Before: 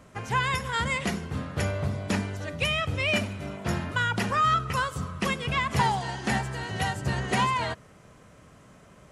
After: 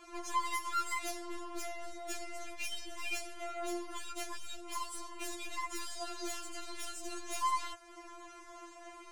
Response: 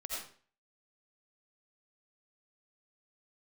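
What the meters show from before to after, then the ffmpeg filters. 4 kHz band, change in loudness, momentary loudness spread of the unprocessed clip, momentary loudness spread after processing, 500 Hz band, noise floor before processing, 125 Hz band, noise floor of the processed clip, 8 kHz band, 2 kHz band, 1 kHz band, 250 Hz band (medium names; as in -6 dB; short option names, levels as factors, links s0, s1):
-11.0 dB, -12.0 dB, 7 LU, 16 LU, -12.0 dB, -54 dBFS, under -35 dB, -53 dBFS, -2.0 dB, -14.5 dB, -10.5 dB, -15.0 dB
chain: -filter_complex "[0:a]acrossover=split=5800[s0][s1];[s0]acompressor=threshold=0.0112:ratio=6[s2];[s2][s1]amix=inputs=2:normalize=0,lowpass=10000,aeval=exprs='(tanh(100*val(0)+0.25)-tanh(0.25))/100':c=same,afftfilt=real='re*4*eq(mod(b,16),0)':imag='im*4*eq(mod(b,16),0)':win_size=2048:overlap=0.75,volume=2.37"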